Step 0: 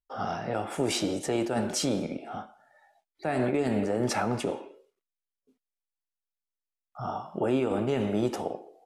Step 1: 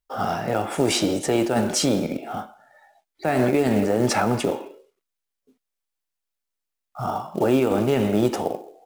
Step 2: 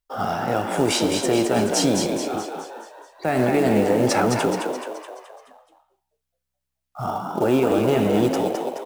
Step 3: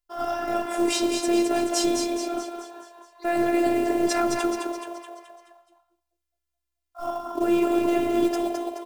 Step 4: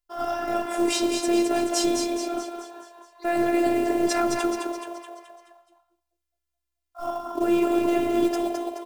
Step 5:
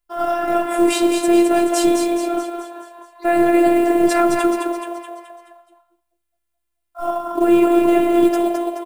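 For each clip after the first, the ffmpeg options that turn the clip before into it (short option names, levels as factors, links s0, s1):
-af "acrusher=bits=6:mode=log:mix=0:aa=0.000001,volume=2.24"
-filter_complex "[0:a]asplit=7[s0][s1][s2][s3][s4][s5][s6];[s1]adelay=213,afreqshift=65,volume=0.562[s7];[s2]adelay=426,afreqshift=130,volume=0.282[s8];[s3]adelay=639,afreqshift=195,volume=0.141[s9];[s4]adelay=852,afreqshift=260,volume=0.07[s10];[s5]adelay=1065,afreqshift=325,volume=0.0351[s11];[s6]adelay=1278,afreqshift=390,volume=0.0176[s12];[s0][s7][s8][s9][s10][s11][s12]amix=inputs=7:normalize=0"
-af "afftfilt=real='hypot(re,im)*cos(PI*b)':imag='0':win_size=512:overlap=0.75"
-af anull
-af "aecho=1:1:5.9:0.74,volume=1.5"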